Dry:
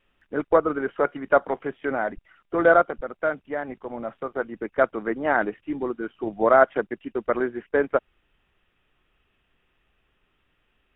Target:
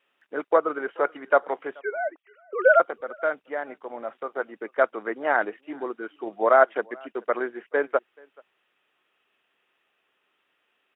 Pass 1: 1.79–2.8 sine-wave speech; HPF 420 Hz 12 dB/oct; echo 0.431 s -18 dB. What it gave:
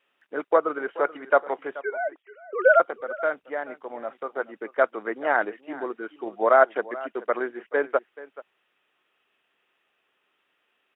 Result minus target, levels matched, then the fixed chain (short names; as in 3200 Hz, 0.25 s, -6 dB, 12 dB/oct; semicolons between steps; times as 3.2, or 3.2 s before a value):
echo-to-direct +9.5 dB
1.79–2.8 sine-wave speech; HPF 420 Hz 12 dB/oct; echo 0.431 s -27.5 dB